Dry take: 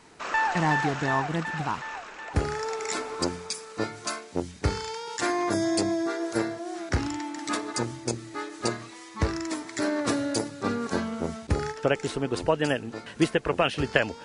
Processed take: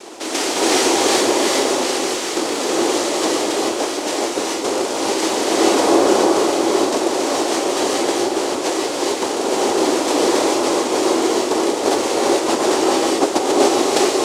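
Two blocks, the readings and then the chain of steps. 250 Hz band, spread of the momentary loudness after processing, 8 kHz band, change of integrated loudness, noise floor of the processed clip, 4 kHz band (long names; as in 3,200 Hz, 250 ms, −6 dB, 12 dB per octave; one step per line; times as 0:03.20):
+10.0 dB, 6 LU, +16.0 dB, +11.5 dB, −23 dBFS, +14.5 dB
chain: compressor on every frequency bin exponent 0.6
cochlear-implant simulation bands 2
low shelf with overshoot 220 Hz −12 dB, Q 3
reverb whose tail is shaped and stops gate 460 ms rising, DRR −4 dB
level −1 dB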